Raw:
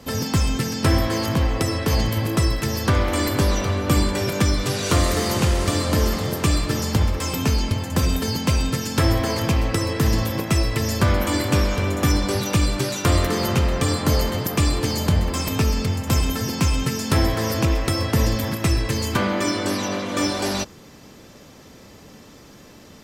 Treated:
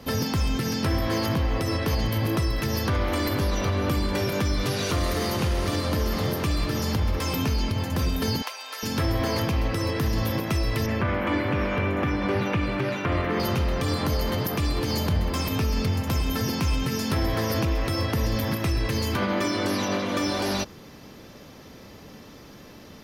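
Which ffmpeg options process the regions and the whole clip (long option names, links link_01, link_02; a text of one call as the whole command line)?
ffmpeg -i in.wav -filter_complex "[0:a]asettb=1/sr,asplit=3[link_01][link_02][link_03];[link_01]atrim=end=8.424[link_04];[link_02]atrim=start=8.42:end=8.83,asetpts=PTS-STARTPTS,afade=type=in:duration=0.004:curve=qsin,afade=type=out:start_time=0.406:duration=0.004:curve=qsin,acompressor=threshold=-23dB:ratio=6:attack=3.2:release=140:knee=1:detection=peak,highpass=frequency=660:width=0.5412,highpass=frequency=660:width=1.3066[link_05];[link_03]atrim=start=8.826[link_06];[link_04][link_05]acrossfade=duration=0.004:curve1=hsin:curve2=qsin[link_07];[link_07][link_06]acrossfade=duration=0.004:curve1=qsin:curve2=hsin,asettb=1/sr,asplit=3[link_08][link_09][link_10];[link_08]atrim=end=10.864[link_11];[link_09]atrim=start=10.86:end=13.4,asetpts=PTS-STARTPTS,afade=type=in:duration=0.004:curve=qsin,afade=type=out:start_time=2.536:duration=0.004:curve=qsin,highpass=90,acrossover=split=5700[link_12][link_13];[link_13]acompressor=threshold=-43dB:ratio=4:attack=1:release=60[link_14];[link_12][link_14]amix=inputs=2:normalize=0,highshelf=frequency=3300:width_type=q:width=1.5:gain=-10[link_15];[link_10]atrim=start=13.396[link_16];[link_11][link_15]acrossfade=duration=0.004:curve1=hsin:curve2=qsin[link_17];[link_17][link_16]acrossfade=duration=0.004:curve1=qsin:curve2=hsin,alimiter=limit=-16dB:level=0:latency=1:release=77,equalizer=frequency=7700:width_type=o:width=0.36:gain=-12" out.wav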